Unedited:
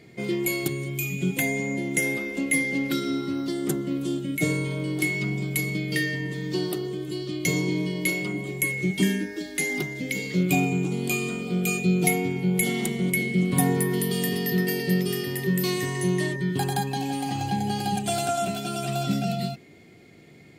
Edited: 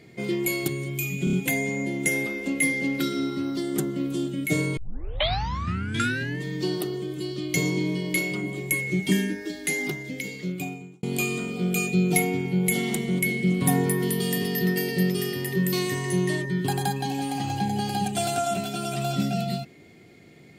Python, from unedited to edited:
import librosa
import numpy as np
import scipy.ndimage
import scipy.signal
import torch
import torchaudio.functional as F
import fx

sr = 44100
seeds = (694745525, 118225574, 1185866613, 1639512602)

y = fx.edit(x, sr, fx.stutter(start_s=1.24, slice_s=0.03, count=4),
    fx.tape_start(start_s=4.68, length_s=1.64),
    fx.fade_out_span(start_s=9.66, length_s=1.28), tone=tone)